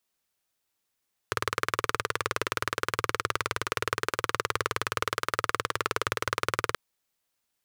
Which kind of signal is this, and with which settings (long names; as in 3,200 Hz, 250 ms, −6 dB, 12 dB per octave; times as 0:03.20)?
pulse-train model of a single-cylinder engine, steady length 5.43 s, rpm 2,300, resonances 110/450/1,200 Hz